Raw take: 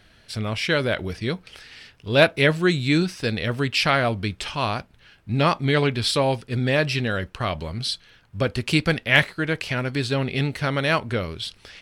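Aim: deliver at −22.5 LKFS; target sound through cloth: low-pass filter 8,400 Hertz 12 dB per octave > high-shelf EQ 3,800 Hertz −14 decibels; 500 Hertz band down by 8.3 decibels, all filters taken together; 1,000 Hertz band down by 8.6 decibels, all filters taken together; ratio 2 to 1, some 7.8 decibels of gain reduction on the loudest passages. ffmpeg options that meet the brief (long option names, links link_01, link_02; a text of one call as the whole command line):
ffmpeg -i in.wav -af "equalizer=frequency=500:width_type=o:gain=-8,equalizer=frequency=1000:width_type=o:gain=-8,acompressor=threshold=-29dB:ratio=2,lowpass=8400,highshelf=frequency=3800:gain=-14,volume=9.5dB" out.wav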